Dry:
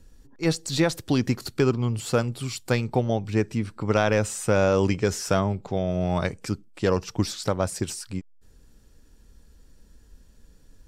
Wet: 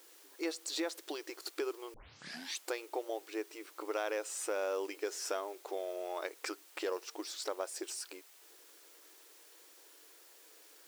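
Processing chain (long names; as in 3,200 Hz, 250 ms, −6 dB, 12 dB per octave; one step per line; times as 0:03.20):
0:06.43–0:06.84: parametric band 1,400 Hz +8.5 dB 2.9 octaves
downward compressor 2.5 to 1, threshold −38 dBFS, peak gain reduction 14.5 dB
bit-depth reduction 10 bits, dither triangular
linear-phase brick-wall high-pass 300 Hz
0:01.94: tape start 0.72 s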